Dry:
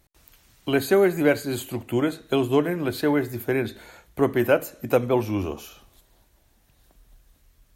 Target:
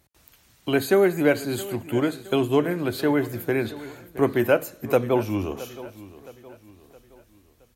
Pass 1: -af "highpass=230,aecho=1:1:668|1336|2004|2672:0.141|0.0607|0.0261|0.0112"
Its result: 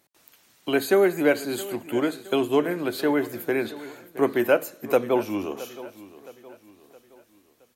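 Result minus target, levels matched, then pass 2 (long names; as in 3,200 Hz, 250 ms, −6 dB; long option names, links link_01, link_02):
125 Hz band −8.5 dB
-af "highpass=59,aecho=1:1:668|1336|2004|2672:0.141|0.0607|0.0261|0.0112"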